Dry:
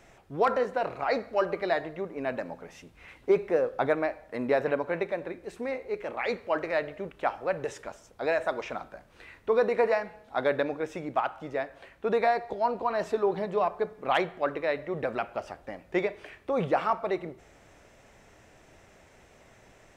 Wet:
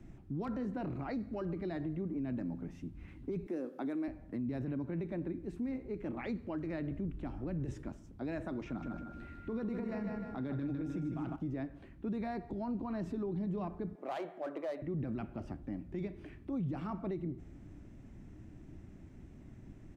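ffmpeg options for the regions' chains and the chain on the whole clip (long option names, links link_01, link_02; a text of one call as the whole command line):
ffmpeg -i in.wav -filter_complex "[0:a]asettb=1/sr,asplit=3[link_01][link_02][link_03];[link_01]atrim=end=3.464[link_04];[link_02]atrim=start=3.46:end=4.08,asetpts=PTS-STARTPTS,afade=type=in:duration=0.004:curve=qsin,afade=type=out:start_time=0.616:duration=0.004:curve=qsin,highpass=frequency=250:width=0.5412,highpass=frequency=250:width=1.3066,highshelf=frequency=5100:gain=8[link_05];[link_03]atrim=start=4.076[link_06];[link_04][link_05]acrossfade=duration=0.004:curve1=hsin:curve2=qsin[link_07];[link_07][link_06]acrossfade=duration=0.004:curve1=qsin:curve2=hsin,asettb=1/sr,asplit=3[link_08][link_09][link_10];[link_08]atrim=end=6.914[link_11];[link_09]atrim=start=6.91:end=7.82,asetpts=PTS-STARTPTS,afade=type=in:duration=0.004:curve=qsin,afade=type=out:start_time=0.906:duration=0.004:curve=qsin,lowshelf=frequency=77:gain=12,acrossover=split=440|3000[link_12][link_13][link_14];[link_13]acompressor=threshold=-37dB:ratio=2:attack=3.2:release=140:knee=2.83:detection=peak[link_15];[link_12][link_15][link_14]amix=inputs=3:normalize=0[link_16];[link_10]atrim=start=7.816[link_17];[link_11][link_16]acrossfade=duration=0.004:curve1=hsin:curve2=qsin[link_18];[link_18][link_17]acrossfade=duration=0.004:curve1=qsin:curve2=hsin,asettb=1/sr,asplit=3[link_19][link_20][link_21];[link_19]atrim=end=8.674[link_22];[link_20]atrim=start=8.67:end=11.36,asetpts=PTS-STARTPTS,afade=type=in:duration=0.004:curve=qsin,afade=type=out:start_time=2.686:duration=0.004:curve=qsin,acompressor=threshold=-24dB:ratio=6:attack=3.2:release=140:knee=1:detection=peak,aeval=exprs='val(0)+0.00794*sin(2*PI*1400*n/s)':channel_layout=same,aecho=1:1:153|306|459|612|765|918:0.531|0.26|0.127|0.0625|0.0306|0.015,atrim=end_sample=118629[link_23];[link_21]atrim=start=11.356[link_24];[link_22][link_23]acrossfade=duration=0.004:curve1=hsin:curve2=qsin[link_25];[link_25][link_24]acrossfade=duration=0.004:curve1=qsin:curve2=hsin,asettb=1/sr,asplit=3[link_26][link_27][link_28];[link_26]atrim=end=13.954[link_29];[link_27]atrim=start=13.95:end=14.82,asetpts=PTS-STARTPTS,afade=type=in:duration=0.004:curve=qsin,afade=type=out:start_time=0.866:duration=0.004:curve=qsin,aeval=exprs='clip(val(0),-1,0.0447)':channel_layout=same,highpass=frequency=620:width_type=q:width=3.5[link_30];[link_28]atrim=start=14.816[link_31];[link_29][link_30]acrossfade=duration=0.004:curve1=hsin:curve2=qsin[link_32];[link_32][link_31]acrossfade=duration=0.004:curve1=qsin:curve2=hsin,firequalizer=gain_entry='entry(310,0);entry(460,-21);entry(3800,-24)':delay=0.05:min_phase=1,acrossover=split=150|3000[link_33][link_34][link_35];[link_34]acompressor=threshold=-43dB:ratio=6[link_36];[link_33][link_36][link_35]amix=inputs=3:normalize=0,alimiter=level_in=16dB:limit=-24dB:level=0:latency=1:release=37,volume=-16dB,volume=9.5dB" out.wav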